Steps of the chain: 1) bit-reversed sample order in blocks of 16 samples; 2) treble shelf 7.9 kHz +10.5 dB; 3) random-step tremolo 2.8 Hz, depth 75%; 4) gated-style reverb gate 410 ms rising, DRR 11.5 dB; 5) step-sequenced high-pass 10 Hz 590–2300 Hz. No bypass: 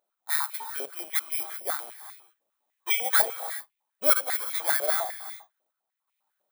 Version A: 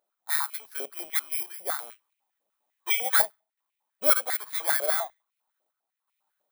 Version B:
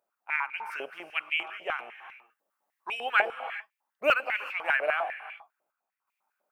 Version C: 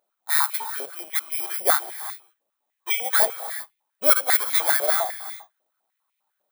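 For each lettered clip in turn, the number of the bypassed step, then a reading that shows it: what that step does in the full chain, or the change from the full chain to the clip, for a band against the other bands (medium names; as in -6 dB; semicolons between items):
4, momentary loudness spread change -5 LU; 1, 2 kHz band +4.5 dB; 3, momentary loudness spread change -2 LU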